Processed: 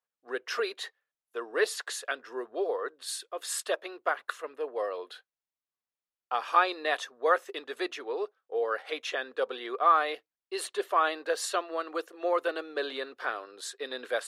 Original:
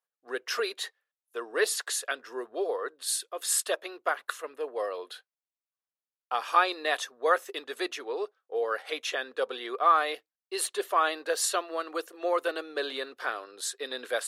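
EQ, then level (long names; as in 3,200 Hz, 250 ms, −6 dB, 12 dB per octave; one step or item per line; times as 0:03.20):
low-pass filter 3,600 Hz 6 dB per octave
0.0 dB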